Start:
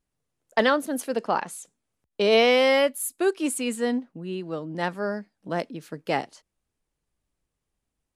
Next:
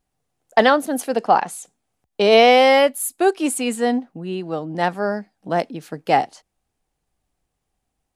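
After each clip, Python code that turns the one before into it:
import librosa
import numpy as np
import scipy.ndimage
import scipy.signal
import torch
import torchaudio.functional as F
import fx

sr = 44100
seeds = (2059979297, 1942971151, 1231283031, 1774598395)

y = fx.peak_eq(x, sr, hz=760.0, db=10.5, octaves=0.25)
y = F.gain(torch.from_numpy(y), 5.0).numpy()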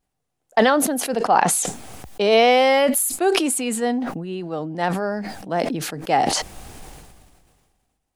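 y = fx.sustainer(x, sr, db_per_s=32.0)
y = F.gain(torch.from_numpy(y), -3.0).numpy()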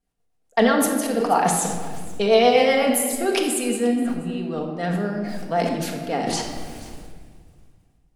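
y = fx.rotary_switch(x, sr, hz=8.0, then_hz=0.9, switch_at_s=2.84)
y = y + 10.0 ** (-20.5 / 20.0) * np.pad(y, (int(481 * sr / 1000.0), 0))[:len(y)]
y = fx.room_shoebox(y, sr, seeds[0], volume_m3=1600.0, walls='mixed', distance_m=1.7)
y = F.gain(torch.from_numpy(y), -2.0).numpy()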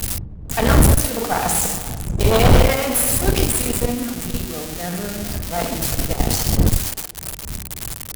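y = x + 0.5 * 10.0 ** (-13.0 / 20.0) * np.diff(np.sign(x), prepend=np.sign(x[:1]))
y = fx.dmg_wind(y, sr, seeds[1], corner_hz=99.0, level_db=-16.0)
y = fx.cheby_harmonics(y, sr, harmonics=(4,), levels_db=(-10,), full_scale_db=-2.5)
y = F.gain(torch.from_numpy(y), -3.5).numpy()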